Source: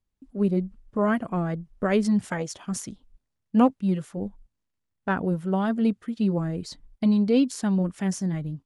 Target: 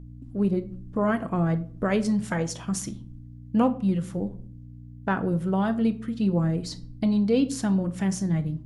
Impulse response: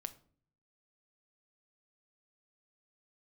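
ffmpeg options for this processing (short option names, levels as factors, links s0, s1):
-filter_complex "[0:a]asplit=2[s0][s1];[s1]acompressor=threshold=0.0355:ratio=6,volume=1.33[s2];[s0][s2]amix=inputs=2:normalize=0,aeval=exprs='val(0)+0.0158*(sin(2*PI*60*n/s)+sin(2*PI*2*60*n/s)/2+sin(2*PI*3*60*n/s)/3+sin(2*PI*4*60*n/s)/4+sin(2*PI*5*60*n/s)/5)':c=same[s3];[1:a]atrim=start_sample=2205[s4];[s3][s4]afir=irnorm=-1:irlink=0,volume=0.891"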